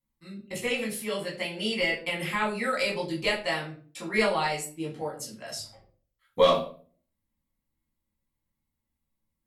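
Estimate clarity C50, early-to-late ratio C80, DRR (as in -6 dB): 8.0 dB, 13.0 dB, -5.0 dB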